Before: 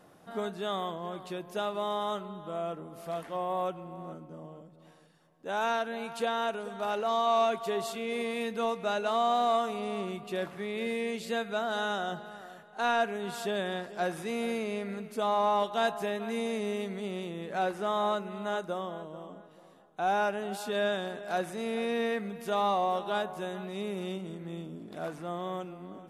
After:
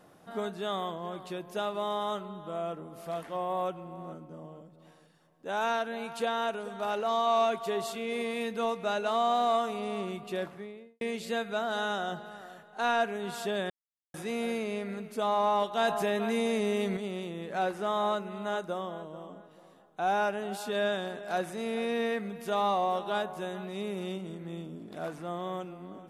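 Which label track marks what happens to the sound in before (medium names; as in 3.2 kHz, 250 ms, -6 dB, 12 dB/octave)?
10.300000	11.010000	studio fade out
13.700000	14.140000	mute
15.790000	16.970000	level flattener amount 50%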